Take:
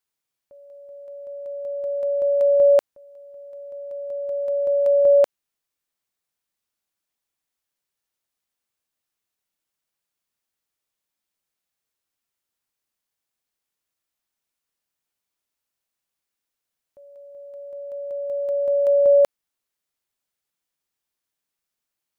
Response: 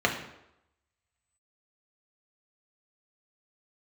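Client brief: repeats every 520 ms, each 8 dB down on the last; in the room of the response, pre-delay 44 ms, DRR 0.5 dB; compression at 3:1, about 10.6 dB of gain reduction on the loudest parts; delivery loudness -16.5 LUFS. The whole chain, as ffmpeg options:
-filter_complex "[0:a]acompressor=threshold=0.0447:ratio=3,aecho=1:1:520|1040|1560|2080|2600:0.398|0.159|0.0637|0.0255|0.0102,asplit=2[s0][s1];[1:a]atrim=start_sample=2205,adelay=44[s2];[s1][s2]afir=irnorm=-1:irlink=0,volume=0.188[s3];[s0][s3]amix=inputs=2:normalize=0,volume=2.11"

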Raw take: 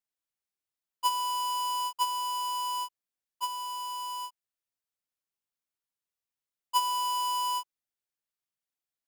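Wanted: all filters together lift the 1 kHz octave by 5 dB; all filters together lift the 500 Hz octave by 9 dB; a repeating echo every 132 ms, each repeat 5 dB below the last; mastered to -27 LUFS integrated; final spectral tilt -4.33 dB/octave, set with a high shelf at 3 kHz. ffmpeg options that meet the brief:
-af "equalizer=f=500:t=o:g=8.5,equalizer=f=1000:t=o:g=4,highshelf=f=3000:g=-7.5,aecho=1:1:132|264|396|528|660|792|924:0.562|0.315|0.176|0.0988|0.0553|0.031|0.0173"

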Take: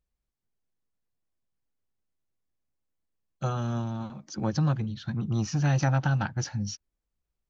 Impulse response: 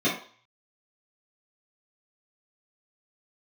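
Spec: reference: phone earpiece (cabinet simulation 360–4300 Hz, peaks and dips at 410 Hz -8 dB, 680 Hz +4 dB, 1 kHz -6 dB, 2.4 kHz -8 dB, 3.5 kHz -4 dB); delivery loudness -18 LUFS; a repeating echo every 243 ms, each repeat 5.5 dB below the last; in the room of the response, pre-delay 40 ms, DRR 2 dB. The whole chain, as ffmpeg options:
-filter_complex "[0:a]aecho=1:1:243|486|729|972|1215|1458|1701:0.531|0.281|0.149|0.079|0.0419|0.0222|0.0118,asplit=2[s0][s1];[1:a]atrim=start_sample=2205,adelay=40[s2];[s1][s2]afir=irnorm=-1:irlink=0,volume=0.168[s3];[s0][s3]amix=inputs=2:normalize=0,highpass=360,equalizer=f=410:t=q:w=4:g=-8,equalizer=f=680:t=q:w=4:g=4,equalizer=f=1000:t=q:w=4:g=-6,equalizer=f=2400:t=q:w=4:g=-8,equalizer=f=3500:t=q:w=4:g=-4,lowpass=f=4300:w=0.5412,lowpass=f=4300:w=1.3066,volume=5.62"

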